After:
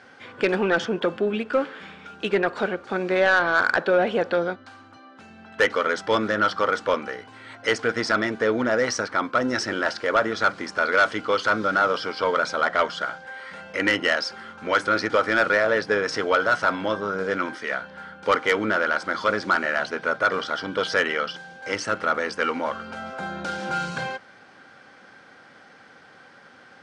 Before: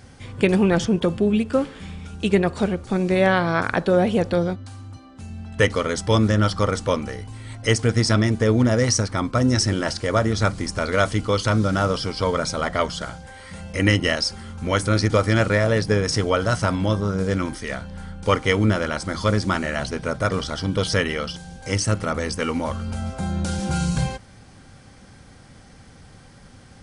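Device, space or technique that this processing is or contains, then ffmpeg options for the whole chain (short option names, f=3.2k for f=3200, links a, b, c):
intercom: -af "highpass=380,lowpass=3.6k,equalizer=f=1.5k:t=o:w=0.38:g=8,asoftclip=type=tanh:threshold=-12dB,volume=1.5dB"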